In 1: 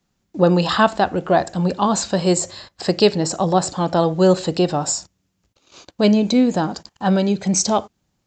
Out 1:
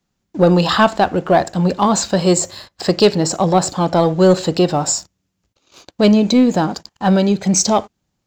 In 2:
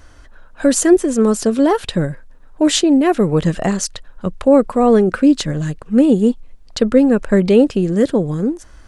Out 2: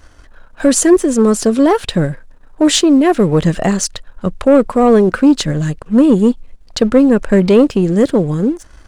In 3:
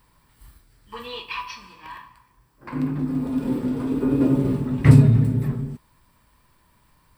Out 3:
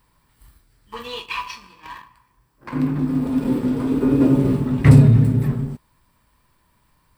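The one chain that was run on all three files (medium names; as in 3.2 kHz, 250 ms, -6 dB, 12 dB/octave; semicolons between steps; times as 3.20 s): waveshaping leveller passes 1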